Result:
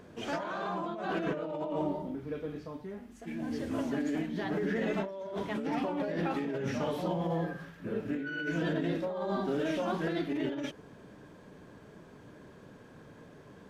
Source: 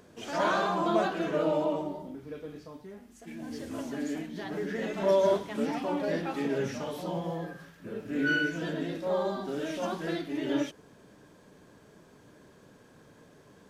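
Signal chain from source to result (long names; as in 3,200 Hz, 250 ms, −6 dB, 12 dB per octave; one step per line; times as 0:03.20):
bass and treble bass +2 dB, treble −8 dB
compressor whose output falls as the input rises −33 dBFS, ratio −1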